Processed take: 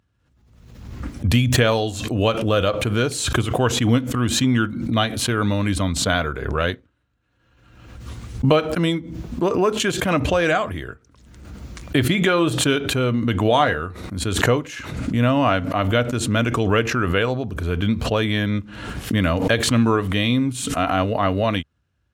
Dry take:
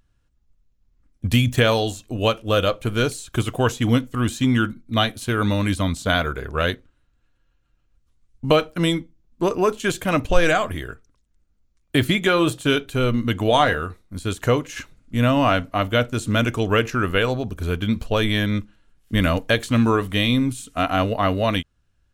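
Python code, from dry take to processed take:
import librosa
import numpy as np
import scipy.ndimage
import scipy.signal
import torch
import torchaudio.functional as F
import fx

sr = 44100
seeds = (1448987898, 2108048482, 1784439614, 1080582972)

y = scipy.signal.sosfilt(scipy.signal.butter(4, 62.0, 'highpass', fs=sr, output='sos'), x)
y = fx.high_shelf(y, sr, hz=5600.0, db=-9.5)
y = fx.pre_swell(y, sr, db_per_s=46.0)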